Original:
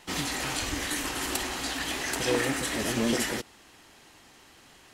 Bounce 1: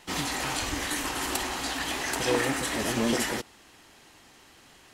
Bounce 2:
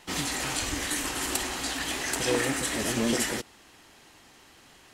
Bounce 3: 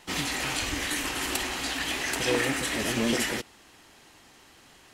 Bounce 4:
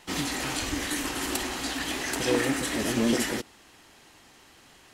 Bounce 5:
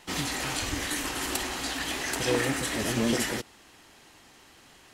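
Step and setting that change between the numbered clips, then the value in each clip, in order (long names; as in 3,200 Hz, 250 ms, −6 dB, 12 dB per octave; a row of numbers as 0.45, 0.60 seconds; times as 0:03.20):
dynamic equaliser, frequency: 920, 8,200, 2,500, 280, 110 Hertz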